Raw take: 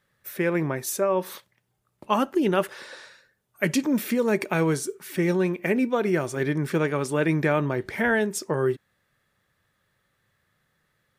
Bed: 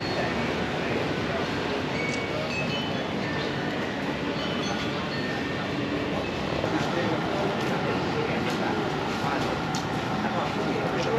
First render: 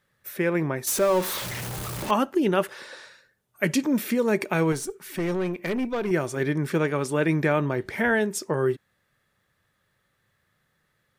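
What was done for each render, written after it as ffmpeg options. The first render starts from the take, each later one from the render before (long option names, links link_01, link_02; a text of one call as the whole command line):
ffmpeg -i in.wav -filter_complex "[0:a]asettb=1/sr,asplit=3[link_01][link_02][link_03];[link_01]atrim=end=0.874[link_04];[link_02]atrim=start=0.87:end=2.11,asetpts=PTS-STARTPTS,afade=type=in:duration=0.004:curve=qsin,afade=type=out:start_time=1.236:duration=0.004:curve=qsin,aeval=exprs='val(0)+0.5*0.0473*sgn(val(0))':channel_layout=same[link_05];[link_03]atrim=start=2.106[link_06];[link_04][link_05]acrossfade=duration=0.004:curve1=hsin:curve2=qsin[link_07];[link_07][link_06]acrossfade=duration=0.004:curve1=qsin:curve2=hsin,asettb=1/sr,asplit=3[link_08][link_09][link_10];[link_08]atrim=end=4.724[link_11];[link_09]atrim=start=4.72:end=6.11,asetpts=PTS-STARTPTS,afade=type=in:duration=0.004:curve=qsin,afade=type=out:start_time=1.386:duration=0.004:curve=qsin,aeval=exprs='(tanh(12.6*val(0)+0.3)-tanh(0.3))/12.6':channel_layout=same[link_12];[link_10]atrim=start=6.106[link_13];[link_11][link_12]acrossfade=duration=0.004:curve1=hsin:curve2=qsin[link_14];[link_14][link_13]acrossfade=duration=0.004:curve1=qsin:curve2=hsin" out.wav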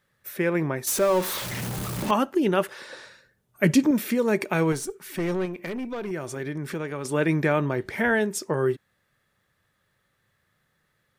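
ffmpeg -i in.wav -filter_complex "[0:a]asettb=1/sr,asplit=3[link_01][link_02][link_03];[link_01]atrim=end=1.514[link_04];[link_02]atrim=start=1.51:end=2.11,asetpts=PTS-STARTPTS,afade=type=in:duration=0.004:curve=qsin,afade=type=out:start_time=0.596:duration=0.004:curve=qsin,equalizer=frequency=210:width=1.5:gain=8.5[link_05];[link_03]atrim=start=2.106[link_06];[link_04][link_05]acrossfade=duration=0.004:curve1=hsin:curve2=qsin[link_07];[link_07][link_06]acrossfade=duration=0.004:curve1=qsin:curve2=hsin,asettb=1/sr,asplit=3[link_08][link_09][link_10];[link_08]atrim=end=2.894[link_11];[link_09]atrim=start=2.89:end=3.91,asetpts=PTS-STARTPTS,afade=type=in:duration=0.004:curve=qsin,afade=type=out:start_time=1.016:duration=0.004:curve=qsin,lowshelf=frequency=380:gain=8[link_12];[link_10]atrim=start=3.906[link_13];[link_11][link_12]acrossfade=duration=0.004:curve1=hsin:curve2=qsin[link_14];[link_14][link_13]acrossfade=duration=0.004:curve1=qsin:curve2=hsin,asettb=1/sr,asplit=3[link_15][link_16][link_17];[link_15]atrim=end=5.454[link_18];[link_16]atrim=start=5.45:end=7.05,asetpts=PTS-STARTPTS,afade=type=in:duration=0.004:curve=qsin,afade=type=out:start_time=1.596:duration=0.004:curve=qsin,acompressor=threshold=-30dB:ratio=2.5:attack=3.2:release=140:knee=1:detection=peak[link_19];[link_17]atrim=start=7.046[link_20];[link_18][link_19]acrossfade=duration=0.004:curve1=hsin:curve2=qsin[link_21];[link_21][link_20]acrossfade=duration=0.004:curve1=qsin:curve2=hsin" out.wav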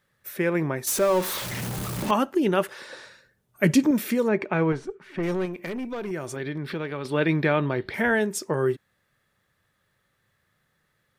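ffmpeg -i in.wav -filter_complex "[0:a]asplit=3[link_01][link_02][link_03];[link_01]afade=type=out:start_time=4.27:duration=0.02[link_04];[link_02]lowpass=2500,afade=type=in:start_time=4.27:duration=0.02,afade=type=out:start_time=5.22:duration=0.02[link_05];[link_03]afade=type=in:start_time=5.22:duration=0.02[link_06];[link_04][link_05][link_06]amix=inputs=3:normalize=0,asettb=1/sr,asplit=3[link_07][link_08][link_09];[link_07]atrim=end=6.364[link_10];[link_08]atrim=start=6.36:end=7.94,asetpts=PTS-STARTPTS,afade=type=in:duration=0.004:curve=qsin,afade=type=out:start_time=1.576:duration=0.004:curve=qsin,highshelf=frequency=5300:width_type=q:width=3:gain=-9[link_11];[link_09]atrim=start=7.936[link_12];[link_10][link_11]acrossfade=duration=0.004:curve1=hsin:curve2=qsin[link_13];[link_13][link_12]acrossfade=duration=0.004:curve1=qsin:curve2=hsin" out.wav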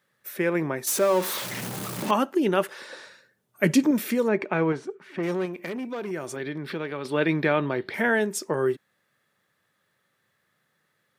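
ffmpeg -i in.wav -af "highpass=170" out.wav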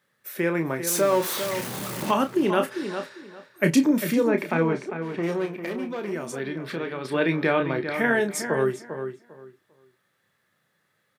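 ffmpeg -i in.wav -filter_complex "[0:a]asplit=2[link_01][link_02];[link_02]adelay=30,volume=-8dB[link_03];[link_01][link_03]amix=inputs=2:normalize=0,asplit=2[link_04][link_05];[link_05]adelay=399,lowpass=frequency=3000:poles=1,volume=-8.5dB,asplit=2[link_06][link_07];[link_07]adelay=399,lowpass=frequency=3000:poles=1,volume=0.21,asplit=2[link_08][link_09];[link_09]adelay=399,lowpass=frequency=3000:poles=1,volume=0.21[link_10];[link_04][link_06][link_08][link_10]amix=inputs=4:normalize=0" out.wav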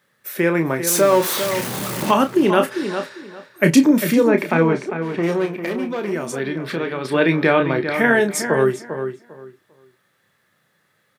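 ffmpeg -i in.wav -af "volume=6.5dB,alimiter=limit=-2dB:level=0:latency=1" out.wav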